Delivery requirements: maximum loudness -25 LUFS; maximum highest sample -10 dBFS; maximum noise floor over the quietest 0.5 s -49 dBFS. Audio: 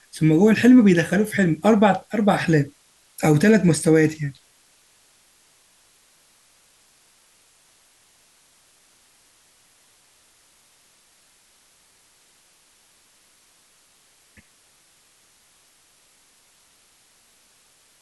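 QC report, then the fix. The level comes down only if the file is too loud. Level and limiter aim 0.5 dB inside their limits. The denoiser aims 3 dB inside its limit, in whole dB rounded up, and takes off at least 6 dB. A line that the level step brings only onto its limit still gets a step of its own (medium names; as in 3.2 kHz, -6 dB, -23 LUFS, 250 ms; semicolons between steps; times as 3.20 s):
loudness -18.0 LUFS: fail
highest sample -5.5 dBFS: fail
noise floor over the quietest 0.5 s -58 dBFS: pass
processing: trim -7.5 dB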